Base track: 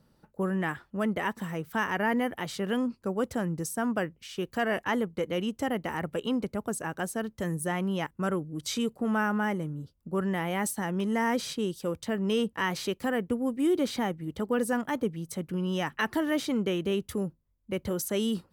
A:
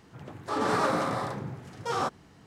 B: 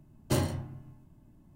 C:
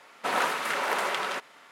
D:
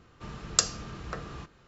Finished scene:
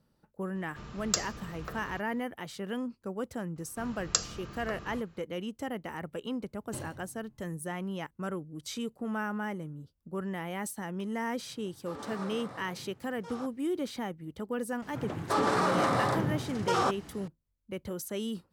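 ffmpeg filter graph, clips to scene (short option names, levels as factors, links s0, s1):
-filter_complex "[4:a]asplit=2[s0][s1];[1:a]asplit=2[s2][s3];[0:a]volume=0.473[s4];[s0]acontrast=36[s5];[s1]bandreject=f=3600:w=27[s6];[s3]alimiter=level_in=15:limit=0.891:release=50:level=0:latency=1[s7];[s5]atrim=end=1.67,asetpts=PTS-STARTPTS,volume=0.335,afade=t=in:d=0.004:c=hsin,afade=t=out:st=1.666:d=0.004:c=hsin,adelay=550[s8];[s6]atrim=end=1.67,asetpts=PTS-STARTPTS,volume=0.631,afade=t=in:d=0.004:c=hsin,afade=t=out:st=1.666:d=0.004:c=hsin,adelay=3560[s9];[2:a]atrim=end=1.55,asetpts=PTS-STARTPTS,volume=0.188,afade=t=in:d=0.004:c=hsin,afade=t=out:st=1.546:d=0.004:c=hsin,adelay=283122S[s10];[s2]atrim=end=2.46,asetpts=PTS-STARTPTS,volume=0.168,afade=t=in:d=0.004:c=hsin,afade=t=out:st=2.456:d=0.004:c=hsin,adelay=501858S[s11];[s7]atrim=end=2.46,asetpts=PTS-STARTPTS,volume=0.133,afade=t=in:d=0.004:c=hsin,afade=t=out:st=2.456:d=0.004:c=hsin,adelay=14820[s12];[s4][s8][s9][s10][s11][s12]amix=inputs=6:normalize=0"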